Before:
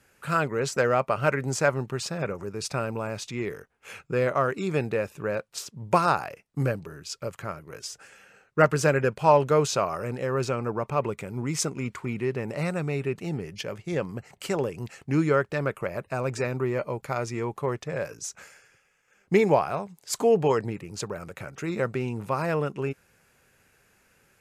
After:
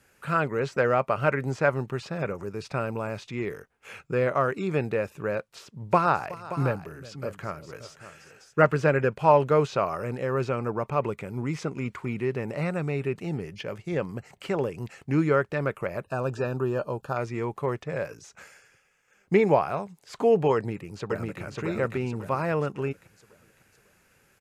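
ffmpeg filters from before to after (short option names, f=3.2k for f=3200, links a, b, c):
-filter_complex "[0:a]asettb=1/sr,asplit=3[a][b][c];[a]atrim=end=5.514[d];[b]atrim=start=5.51:end=8.82,asetpts=PTS-STARTPTS,afade=t=in:d=0.004:c=qsin,afade=t=out:st=3.306:d=0.004:c=qsin,aecho=1:1:370|577:0.112|0.211,atrim=end_sample=145971[e];[c]atrim=start=8.816[f];[d][e]acrossfade=d=0.004:c1=hsin:c2=qsin[g];[g][f]acrossfade=d=0.004:c1=qsin:c2=hsin,asettb=1/sr,asplit=3[h][i][j];[h]atrim=end=16.044[k];[i]atrim=start=16.04:end=17.17,asetpts=PTS-STARTPTS,afade=t=in:d=0.004:c=qsin,afade=t=out:st=1.126:d=0.004:c=qsin,asuperstop=centerf=2100:order=8:qfactor=3[l];[j]atrim=start=17.166[m];[k][l]acrossfade=d=0.004:c1=hsin:c2=qsin[n];[n][m]acrossfade=d=0.004:c1=qsin:c2=hsin,asplit=2[o][p];[p]afade=t=in:st=20.55:d=0.01,afade=t=out:st=21.42:d=0.01,aecho=0:1:550|1100|1650|2200|2750:0.841395|0.336558|0.134623|0.0538493|0.0215397[q];[o][q]amix=inputs=2:normalize=0,acrossover=split=3500[r][s];[s]acompressor=threshold=-53dB:ratio=4:attack=1:release=60[t];[r][t]amix=inputs=2:normalize=0"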